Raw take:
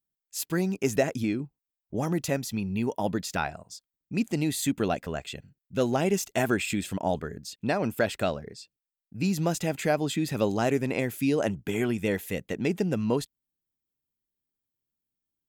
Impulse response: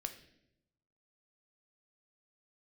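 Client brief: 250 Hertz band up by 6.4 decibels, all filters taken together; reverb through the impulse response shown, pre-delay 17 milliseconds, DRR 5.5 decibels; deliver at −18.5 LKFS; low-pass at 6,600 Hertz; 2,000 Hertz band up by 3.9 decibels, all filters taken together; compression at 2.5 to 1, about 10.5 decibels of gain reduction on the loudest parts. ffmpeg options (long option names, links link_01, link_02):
-filter_complex "[0:a]lowpass=6600,equalizer=frequency=250:width_type=o:gain=8,equalizer=frequency=2000:width_type=o:gain=5,acompressor=threshold=-31dB:ratio=2.5,asplit=2[link_01][link_02];[1:a]atrim=start_sample=2205,adelay=17[link_03];[link_02][link_03]afir=irnorm=-1:irlink=0,volume=-3.5dB[link_04];[link_01][link_04]amix=inputs=2:normalize=0,volume=13dB"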